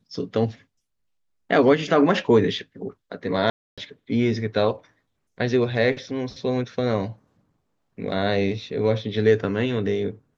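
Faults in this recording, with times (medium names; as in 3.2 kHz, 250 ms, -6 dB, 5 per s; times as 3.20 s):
3.50–3.78 s: dropout 276 ms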